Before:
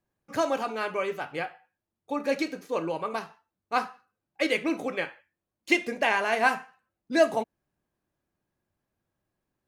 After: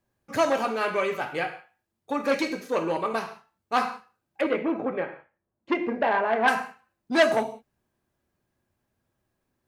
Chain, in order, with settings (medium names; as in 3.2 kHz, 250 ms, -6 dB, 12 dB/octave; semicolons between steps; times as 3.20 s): 4.41–6.48 s: low-pass 1.2 kHz 12 dB/octave; gated-style reverb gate 200 ms falling, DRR 7 dB; transformer saturation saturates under 2 kHz; trim +4 dB